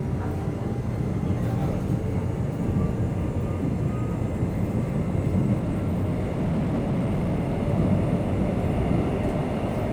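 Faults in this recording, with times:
5.6–7.59 clipped -21 dBFS

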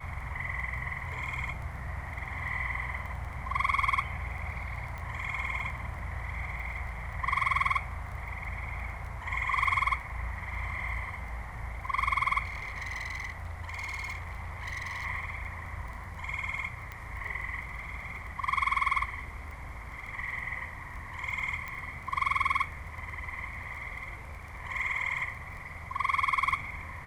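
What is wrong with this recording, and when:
crackle 11/s -39 dBFS
4.98 pop -28 dBFS
12.44–15.06 clipped -33 dBFS
16.92 pop -26 dBFS
21.68 pop -24 dBFS

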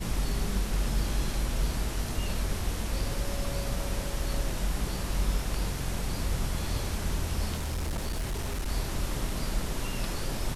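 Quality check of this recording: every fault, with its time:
7.53–8.69 clipped -27.5 dBFS

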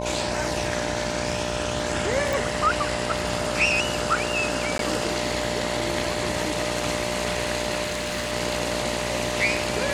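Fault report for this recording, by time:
buzz 60 Hz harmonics 17 -31 dBFS
tone 600 Hz -32 dBFS
2.33 pop
4.78–4.79 gap 12 ms
7.83–8.33 clipped -23 dBFS

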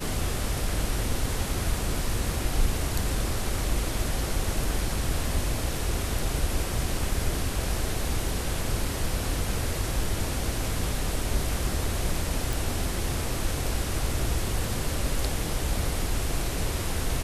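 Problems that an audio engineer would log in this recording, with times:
12.53 pop

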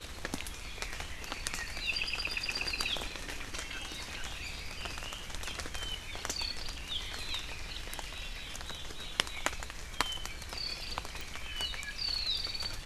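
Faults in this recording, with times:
11.21 pop

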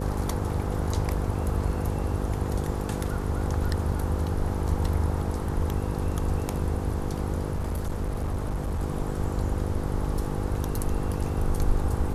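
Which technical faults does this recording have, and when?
buzz 50 Hz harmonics 10 -31 dBFS
7.52–8.82 clipped -24.5 dBFS

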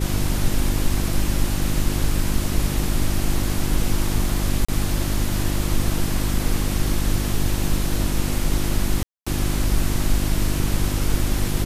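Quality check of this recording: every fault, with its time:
hum 50 Hz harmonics 7 -25 dBFS
4.65–4.68 gap 35 ms
9.03–9.27 gap 0.235 s

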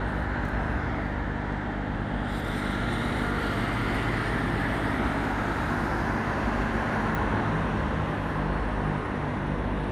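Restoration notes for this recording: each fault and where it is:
hum 50 Hz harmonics 6 -33 dBFS
7.15 pop -18 dBFS

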